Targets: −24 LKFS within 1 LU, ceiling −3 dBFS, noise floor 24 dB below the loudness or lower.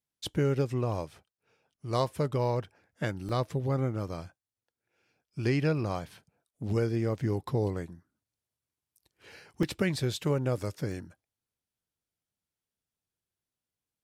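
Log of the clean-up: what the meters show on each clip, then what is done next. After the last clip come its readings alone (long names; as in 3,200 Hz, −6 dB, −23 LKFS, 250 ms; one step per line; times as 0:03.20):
number of dropouts 4; longest dropout 2.4 ms; integrated loudness −31.5 LKFS; sample peak −14.0 dBFS; target loudness −24.0 LKFS
→ repair the gap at 0:02.07/0:03.29/0:09.63/0:10.92, 2.4 ms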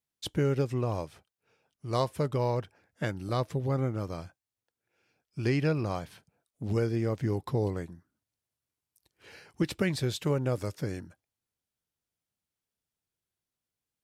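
number of dropouts 0; integrated loudness −31.5 LKFS; sample peak −14.0 dBFS; target loudness −24.0 LKFS
→ level +7.5 dB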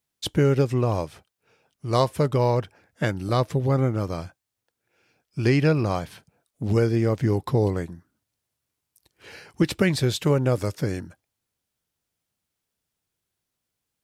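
integrated loudness −24.0 LKFS; sample peak −6.5 dBFS; background noise floor −83 dBFS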